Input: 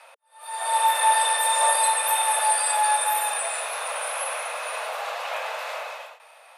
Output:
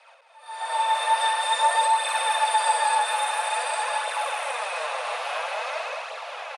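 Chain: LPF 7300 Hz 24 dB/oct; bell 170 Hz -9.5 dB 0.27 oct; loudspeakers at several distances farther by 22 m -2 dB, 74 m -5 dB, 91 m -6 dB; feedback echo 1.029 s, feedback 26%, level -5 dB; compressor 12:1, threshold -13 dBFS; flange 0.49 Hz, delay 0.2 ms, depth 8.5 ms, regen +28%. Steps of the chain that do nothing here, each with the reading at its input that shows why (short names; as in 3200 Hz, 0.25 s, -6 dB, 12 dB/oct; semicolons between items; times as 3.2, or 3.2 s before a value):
bell 170 Hz: input band starts at 430 Hz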